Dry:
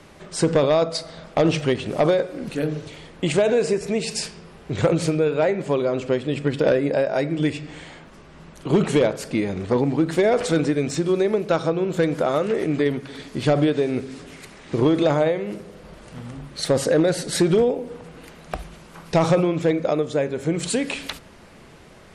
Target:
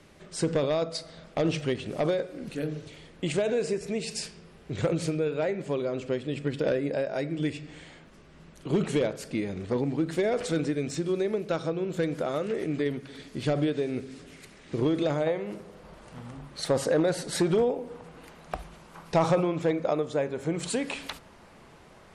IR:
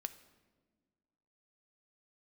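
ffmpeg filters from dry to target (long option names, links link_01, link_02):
-af "asetnsamples=nb_out_samples=441:pad=0,asendcmd='15.27 equalizer g 5',equalizer=frequency=930:width_type=o:width=1.1:gain=-4,volume=-7dB"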